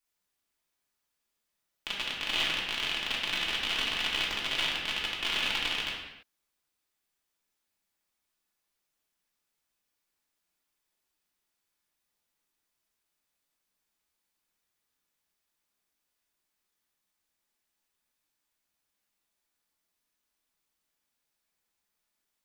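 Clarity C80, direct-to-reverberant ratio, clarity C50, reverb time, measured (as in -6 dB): 4.5 dB, -5.0 dB, 2.0 dB, not exponential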